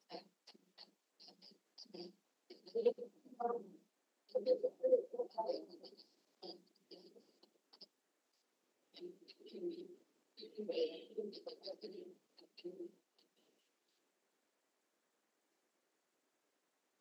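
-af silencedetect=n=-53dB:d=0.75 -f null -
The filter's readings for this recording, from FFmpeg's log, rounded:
silence_start: 7.84
silence_end: 8.97 | silence_duration: 1.13
silence_start: 12.87
silence_end: 17.01 | silence_duration: 4.14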